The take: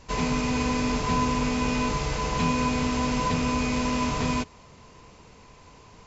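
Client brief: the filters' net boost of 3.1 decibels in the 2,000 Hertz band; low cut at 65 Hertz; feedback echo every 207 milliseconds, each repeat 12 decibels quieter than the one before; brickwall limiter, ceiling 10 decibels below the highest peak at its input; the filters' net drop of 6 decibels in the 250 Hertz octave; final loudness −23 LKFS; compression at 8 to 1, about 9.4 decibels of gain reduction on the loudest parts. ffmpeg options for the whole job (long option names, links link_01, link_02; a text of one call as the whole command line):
ffmpeg -i in.wav -af "highpass=65,equalizer=frequency=250:width_type=o:gain=-6.5,equalizer=frequency=2000:width_type=o:gain=4,acompressor=threshold=-32dB:ratio=8,alimiter=level_in=9dB:limit=-24dB:level=0:latency=1,volume=-9dB,aecho=1:1:207|414|621:0.251|0.0628|0.0157,volume=19dB" out.wav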